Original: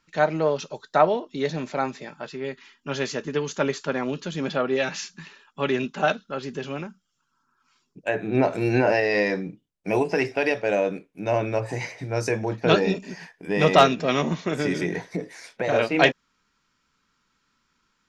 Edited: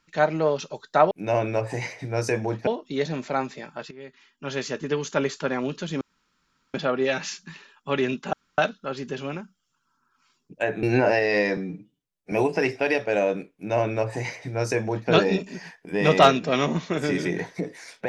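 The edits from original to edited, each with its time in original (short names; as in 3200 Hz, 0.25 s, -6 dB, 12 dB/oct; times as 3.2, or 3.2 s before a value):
2.35–3.24 fade in linear, from -14 dB
4.45 insert room tone 0.73 s
6.04 insert room tone 0.25 s
8.29–8.64 cut
9.38–9.88 stretch 1.5×
11.1–12.66 copy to 1.11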